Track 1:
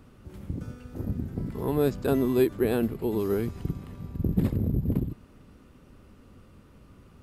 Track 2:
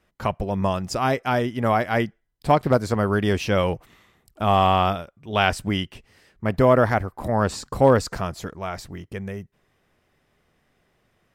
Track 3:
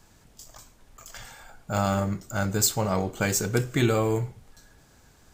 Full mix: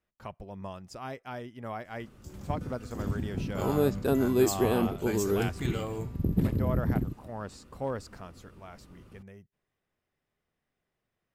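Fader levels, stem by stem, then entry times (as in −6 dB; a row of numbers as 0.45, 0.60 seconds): −1.5, −17.5, −11.5 decibels; 2.00, 0.00, 1.85 seconds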